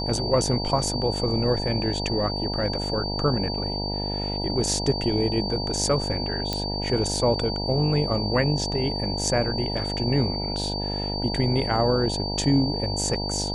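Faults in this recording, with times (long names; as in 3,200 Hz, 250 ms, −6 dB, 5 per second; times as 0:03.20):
mains buzz 50 Hz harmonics 19 −30 dBFS
whistle 4,600 Hz −30 dBFS
0:06.53: click −12 dBFS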